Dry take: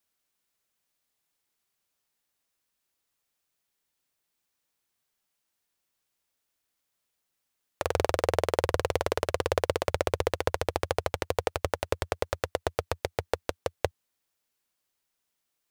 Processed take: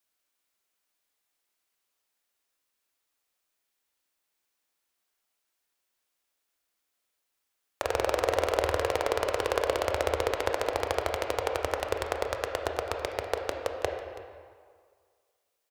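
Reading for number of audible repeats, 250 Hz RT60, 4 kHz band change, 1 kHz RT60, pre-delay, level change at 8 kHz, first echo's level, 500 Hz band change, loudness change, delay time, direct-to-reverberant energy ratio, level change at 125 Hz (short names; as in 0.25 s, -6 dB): 1, 1.7 s, +1.0 dB, 2.0 s, 17 ms, 0.0 dB, -18.0 dB, +0.5 dB, +0.5 dB, 0.328 s, 3.0 dB, -5.5 dB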